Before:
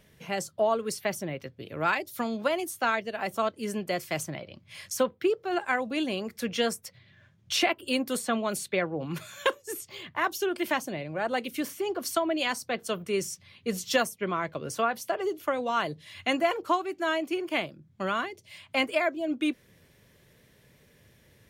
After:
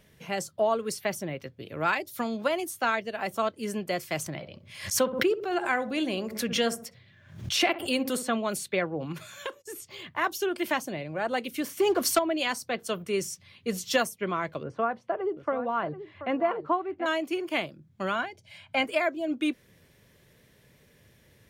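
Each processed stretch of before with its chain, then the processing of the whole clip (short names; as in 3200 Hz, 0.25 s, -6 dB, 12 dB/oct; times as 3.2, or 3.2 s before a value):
4.26–8.28 darkening echo 64 ms, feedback 38%, low-pass 910 Hz, level -11 dB + backwards sustainer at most 98 dB/s
9.12–9.99 gate -56 dBFS, range -19 dB + high shelf 9200 Hz -3 dB + compressor 2:1, threshold -38 dBFS
11.77–12.19 sample leveller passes 2 + HPF 40 Hz
14.63–17.06 LPF 1400 Hz + echo 0.732 s -12.5 dB
18.15–18.85 LPF 3600 Hz 6 dB/oct + comb 1.3 ms, depth 54%
whole clip: dry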